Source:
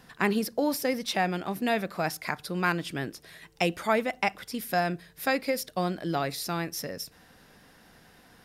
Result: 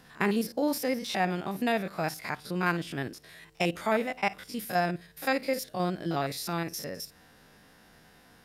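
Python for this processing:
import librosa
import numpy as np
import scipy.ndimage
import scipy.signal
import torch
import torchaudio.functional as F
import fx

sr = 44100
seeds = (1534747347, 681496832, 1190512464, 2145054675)

y = fx.spec_steps(x, sr, hold_ms=50)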